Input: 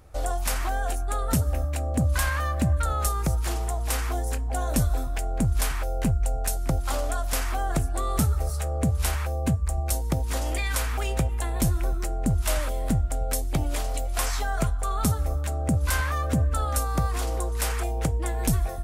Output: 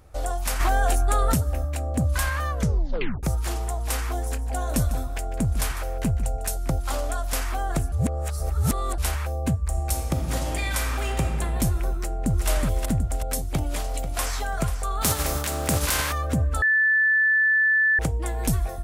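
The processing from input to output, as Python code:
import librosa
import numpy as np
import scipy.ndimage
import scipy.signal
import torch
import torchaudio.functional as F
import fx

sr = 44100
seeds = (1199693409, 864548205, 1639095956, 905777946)

y = fx.env_flatten(x, sr, amount_pct=100, at=(0.59, 1.33), fade=0.02)
y = fx.echo_single(y, sr, ms=150, db=-14.0, at=(4.07, 6.56))
y = fx.reverb_throw(y, sr, start_s=9.68, length_s=1.54, rt60_s=2.4, drr_db=2.5)
y = fx.echo_throw(y, sr, start_s=11.96, length_s=0.52, ms=370, feedback_pct=50, wet_db=-4.0)
y = fx.echo_throw(y, sr, start_s=13.52, length_s=0.81, ms=490, feedback_pct=25, wet_db=-12.0)
y = fx.spec_flatten(y, sr, power=0.52, at=(15.01, 16.11), fade=0.02)
y = fx.edit(y, sr, fx.tape_stop(start_s=2.5, length_s=0.73),
    fx.reverse_span(start_s=7.92, length_s=1.06),
    fx.bleep(start_s=16.62, length_s=1.37, hz=1750.0, db=-16.5), tone=tone)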